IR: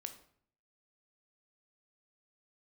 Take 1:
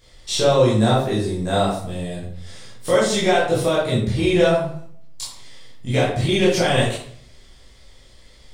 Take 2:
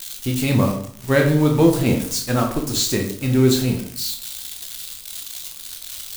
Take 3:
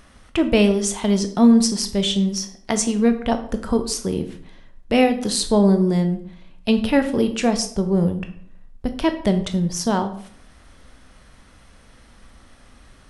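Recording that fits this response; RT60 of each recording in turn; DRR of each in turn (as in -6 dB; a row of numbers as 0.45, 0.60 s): 3; 0.55, 0.60, 0.60 s; -8.5, 1.5, 7.5 dB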